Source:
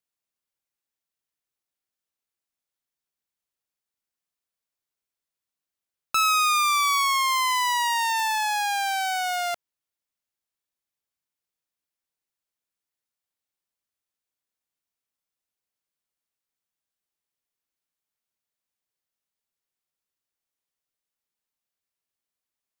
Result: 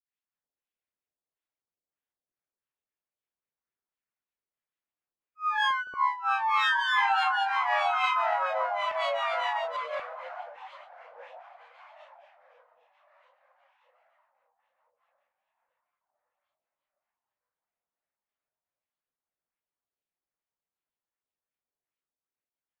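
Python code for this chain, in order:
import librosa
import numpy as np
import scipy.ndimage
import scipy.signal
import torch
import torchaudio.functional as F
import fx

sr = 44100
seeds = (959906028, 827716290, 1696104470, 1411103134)

p1 = fx.notch(x, sr, hz=3900.0, q=7.9)
p2 = p1 + fx.echo_diffused(p1, sr, ms=871, feedback_pct=42, wet_db=-12.5, dry=0)
p3 = fx.filter_lfo_lowpass(p2, sr, shape='sine', hz=1.6, low_hz=500.0, high_hz=2500.0, q=2.0)
p4 = fx.granulator(p3, sr, seeds[0], grain_ms=253.0, per_s=29.0, spray_ms=805.0, spread_st=7)
y = F.gain(torch.from_numpy(p4), 2.5).numpy()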